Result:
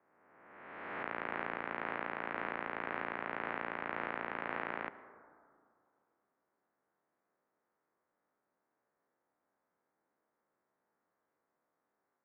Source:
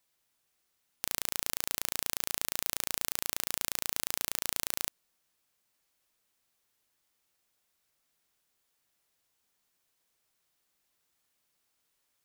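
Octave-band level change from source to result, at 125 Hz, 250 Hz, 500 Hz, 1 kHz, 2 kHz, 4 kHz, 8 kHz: -2.5 dB, +5.0 dB, +6.0 dB, +6.5 dB, +3.5 dB, -19.0 dB, under -40 dB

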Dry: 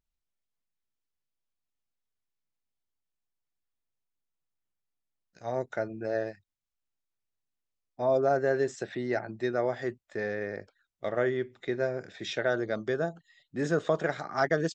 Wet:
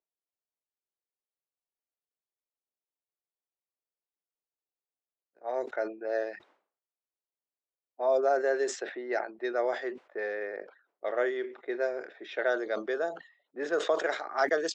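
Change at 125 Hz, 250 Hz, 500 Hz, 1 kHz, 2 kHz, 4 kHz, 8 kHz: under -25 dB, -5.0 dB, -0.5 dB, +0.5 dB, +0.5 dB, 0.0 dB, no reading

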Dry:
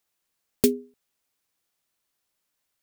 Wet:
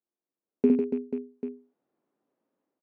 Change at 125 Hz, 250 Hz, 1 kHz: -5.5 dB, +4.0 dB, no reading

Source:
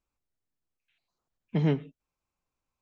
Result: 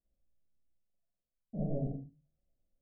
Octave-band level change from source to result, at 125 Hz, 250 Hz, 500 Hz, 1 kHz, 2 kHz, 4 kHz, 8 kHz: -8.0 dB, -8.0 dB, -7.5 dB, -10.0 dB, under -40 dB, under -30 dB, no reading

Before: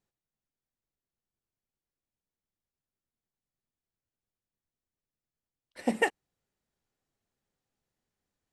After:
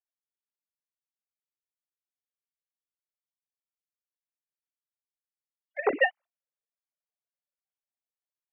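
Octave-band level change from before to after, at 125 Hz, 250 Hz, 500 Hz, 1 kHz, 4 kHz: under -10 dB, -6.5 dB, +4.5 dB, +3.0 dB, no reading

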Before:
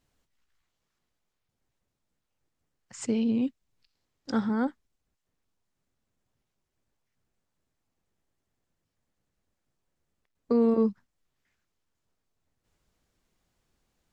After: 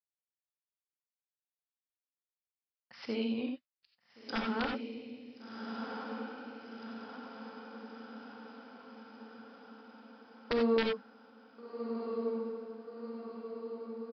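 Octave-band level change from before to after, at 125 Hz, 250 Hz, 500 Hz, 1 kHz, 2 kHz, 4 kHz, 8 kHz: -8.5 dB, -7.5 dB, -2.5 dB, +0.5 dB, +5.5 dB, +7.0 dB, under -20 dB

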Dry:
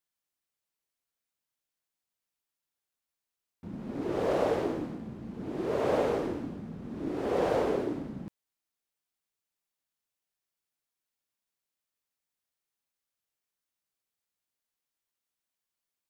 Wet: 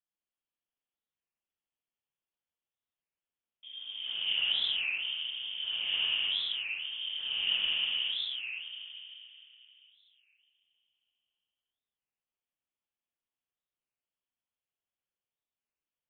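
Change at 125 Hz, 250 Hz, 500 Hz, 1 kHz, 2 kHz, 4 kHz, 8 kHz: under -25 dB, under -30 dB, under -30 dB, -20.0 dB, +9.0 dB, +24.0 dB, no reading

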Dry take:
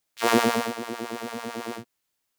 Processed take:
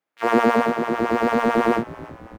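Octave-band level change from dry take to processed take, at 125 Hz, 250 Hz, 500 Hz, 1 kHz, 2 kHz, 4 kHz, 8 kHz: +6.5 dB, +7.5 dB, +8.0 dB, +7.5 dB, +5.0 dB, -4.5 dB, -9.0 dB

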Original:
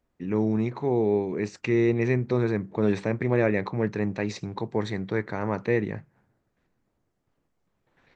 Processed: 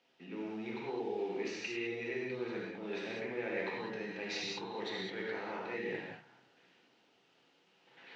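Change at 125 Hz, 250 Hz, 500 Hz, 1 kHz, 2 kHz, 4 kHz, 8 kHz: -24.5 dB, -16.0 dB, -12.5 dB, -9.5 dB, -6.5 dB, +1.5 dB, no reading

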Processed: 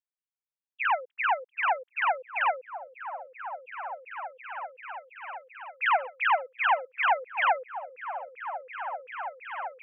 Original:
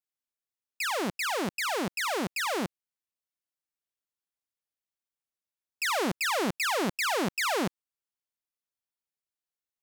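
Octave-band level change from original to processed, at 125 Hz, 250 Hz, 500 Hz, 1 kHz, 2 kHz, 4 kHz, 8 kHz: under -40 dB, under -40 dB, -1.5 dB, +7.0 dB, +3.0 dB, -7.5 dB, under -40 dB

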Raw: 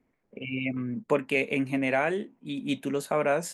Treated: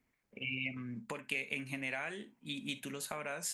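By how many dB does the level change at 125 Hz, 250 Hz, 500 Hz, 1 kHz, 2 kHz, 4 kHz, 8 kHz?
-10.5 dB, -14.0 dB, -18.5 dB, -14.5 dB, -7.0 dB, -2.5 dB, 0.0 dB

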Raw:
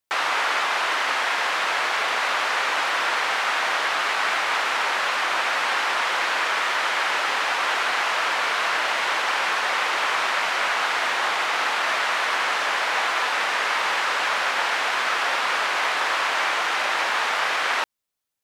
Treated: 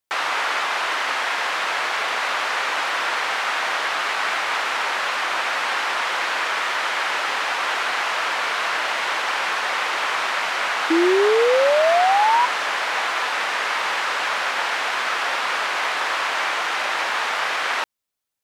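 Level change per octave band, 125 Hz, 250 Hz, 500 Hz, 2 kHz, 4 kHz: no reading, +12.5 dB, +7.5 dB, 0.0 dB, 0.0 dB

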